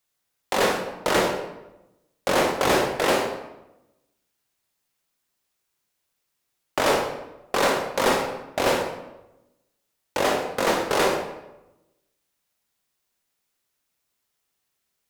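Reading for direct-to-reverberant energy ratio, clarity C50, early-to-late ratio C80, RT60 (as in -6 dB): 2.0 dB, 5.0 dB, 7.5 dB, 0.95 s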